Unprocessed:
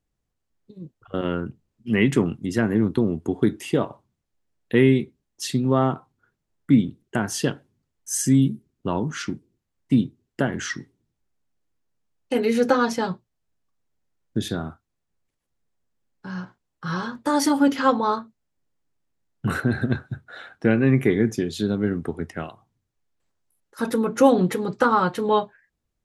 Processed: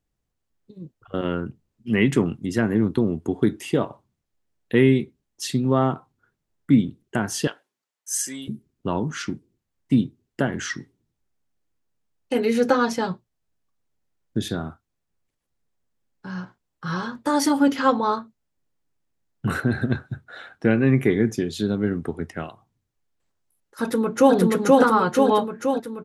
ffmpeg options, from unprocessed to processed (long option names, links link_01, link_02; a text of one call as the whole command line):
ffmpeg -i in.wav -filter_complex "[0:a]asettb=1/sr,asplit=3[link_01][link_02][link_03];[link_01]atrim=end=7.474[link_04];[link_02]atrim=start=7.47:end=8.48,asetpts=PTS-STARTPTS,afade=type=in:duration=0.004:curve=qsin,afade=type=out:start_time=1.006:duration=0.004:curve=qsin,highpass=760[link_05];[link_03]atrim=start=8.476[link_06];[link_04][link_05]acrossfade=duration=0.004:curve1=hsin:curve2=qsin[link_07];[link_07][link_06]acrossfade=duration=0.004:curve1=qsin:curve2=hsin,asplit=2[link_08][link_09];[link_09]afade=type=in:start_time=23.81:duration=0.01,afade=type=out:start_time=24.35:duration=0.01,aecho=0:1:480|960|1440|1920|2400|2880|3360|3840|4320|4800|5280:1|0.65|0.4225|0.274625|0.178506|0.116029|0.0754189|0.0490223|0.0318645|0.0207119|0.0134627[link_10];[link_08][link_10]amix=inputs=2:normalize=0" out.wav